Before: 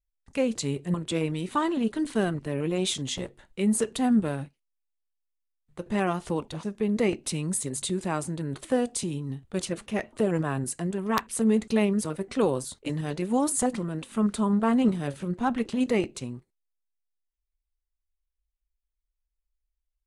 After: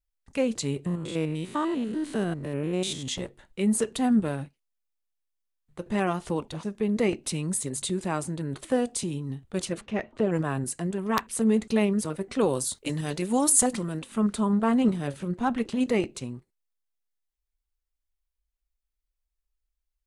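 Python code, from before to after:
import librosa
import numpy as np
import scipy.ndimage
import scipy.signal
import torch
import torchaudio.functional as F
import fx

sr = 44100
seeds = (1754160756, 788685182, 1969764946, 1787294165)

y = fx.spec_steps(x, sr, hold_ms=100, at=(0.86, 3.08))
y = fx.air_absorb(y, sr, metres=120.0, at=(9.81, 10.32))
y = fx.high_shelf(y, sr, hz=3500.0, db=9.5, at=(12.5, 13.99))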